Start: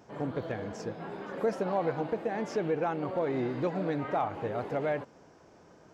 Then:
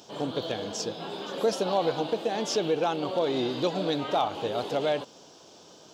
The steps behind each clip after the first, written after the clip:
high-pass filter 280 Hz 6 dB per octave
high shelf with overshoot 2,600 Hz +9 dB, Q 3
level +5.5 dB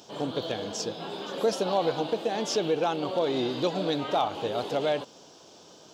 no processing that can be heard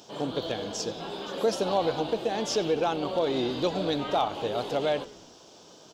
echo with shifted repeats 92 ms, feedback 52%, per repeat −89 Hz, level −19 dB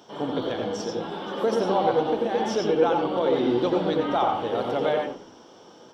convolution reverb RT60 0.25 s, pre-delay 85 ms, DRR 2.5 dB
level −7 dB

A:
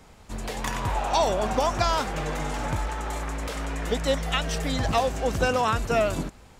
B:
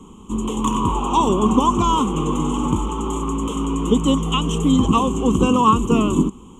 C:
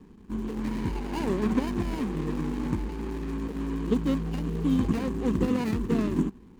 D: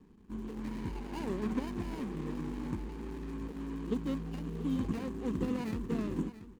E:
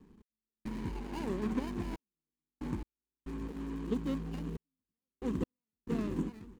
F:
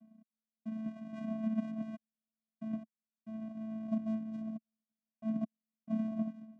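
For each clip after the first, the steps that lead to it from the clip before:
drawn EQ curve 130 Hz 0 dB, 200 Hz +13 dB, 390 Hz +10 dB, 650 Hz −16 dB, 1,100 Hz +11 dB, 1,700 Hz −28 dB, 3,100 Hz +6 dB, 4,700 Hz −30 dB, 6,800 Hz +5 dB, 14,000 Hz −12 dB; level +4.5 dB
running median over 41 samples; level −8 dB
single-tap delay 681 ms −14 dB; level −8.5 dB
gate pattern "x..xxxxxx..." 69 BPM −60 dB
channel vocoder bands 4, square 220 Hz

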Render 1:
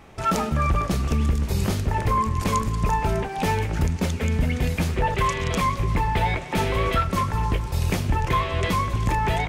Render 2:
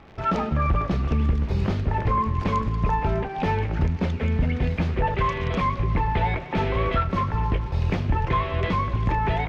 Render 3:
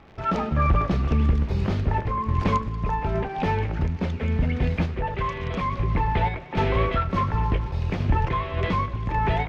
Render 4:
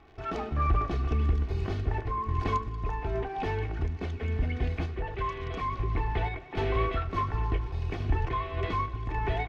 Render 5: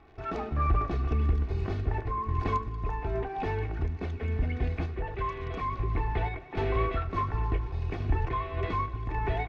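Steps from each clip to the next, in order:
surface crackle 110 per second −30 dBFS; high-frequency loss of the air 250 metres
sample-and-hold tremolo; level +2 dB
comb filter 2.7 ms, depth 62%; level −7.5 dB
high-shelf EQ 4,500 Hz −7 dB; notch filter 3,100 Hz, Q 13

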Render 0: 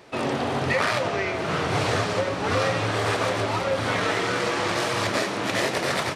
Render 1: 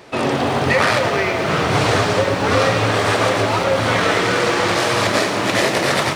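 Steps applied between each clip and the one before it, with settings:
feedback echo at a low word length 107 ms, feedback 80%, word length 8 bits, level −12 dB
level +7 dB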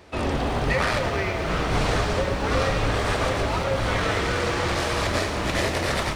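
sub-octave generator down 2 octaves, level +3 dB
level −8 dB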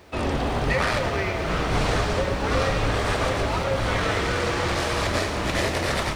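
bit reduction 11 bits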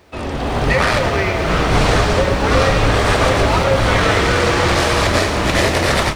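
automatic gain control gain up to 12.5 dB

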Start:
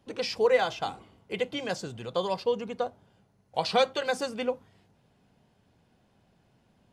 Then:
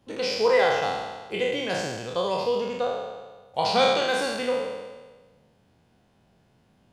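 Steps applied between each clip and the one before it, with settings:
peak hold with a decay on every bin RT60 1.35 s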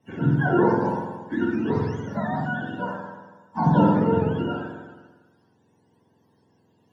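frequency axis turned over on the octave scale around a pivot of 840 Hz
convolution reverb RT60 0.50 s, pre-delay 3 ms, DRR 21 dB
level −6 dB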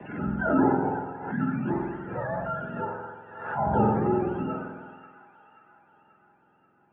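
single-sideband voice off tune −86 Hz 250–2,500 Hz
delay with a high-pass on its return 534 ms, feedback 57%, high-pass 1,600 Hz, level −10 dB
background raised ahead of every attack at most 69 dB per second
level −2 dB

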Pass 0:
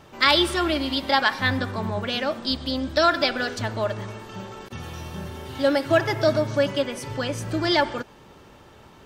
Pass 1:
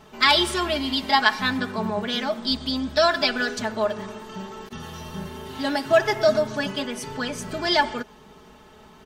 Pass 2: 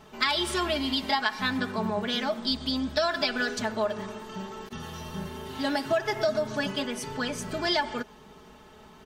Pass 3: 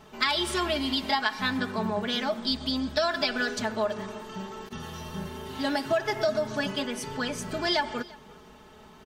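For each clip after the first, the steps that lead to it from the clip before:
notch filter 560 Hz, Q 12; comb filter 4.7 ms, depth 75%; dynamic equaliser 7,000 Hz, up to +4 dB, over −38 dBFS, Q 1.5; level −1.5 dB
downward compressor 6 to 1, threshold −20 dBFS, peak gain reduction 8.5 dB; level −2 dB
single-tap delay 345 ms −23 dB

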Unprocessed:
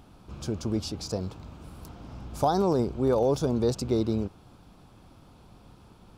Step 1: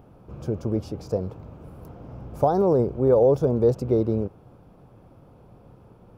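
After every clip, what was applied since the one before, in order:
octave-band graphic EQ 125/500/4,000/8,000 Hz +7/+10/−10/−9 dB
level −2 dB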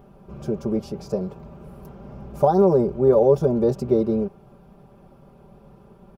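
comb filter 5.1 ms, depth 84%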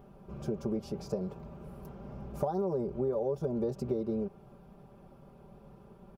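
downward compressor 6 to 1, threshold −24 dBFS, peak gain reduction 12.5 dB
level −5 dB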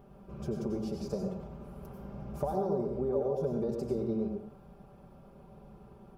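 dense smooth reverb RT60 0.52 s, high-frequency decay 0.8×, pre-delay 80 ms, DRR 2.5 dB
level −1.5 dB

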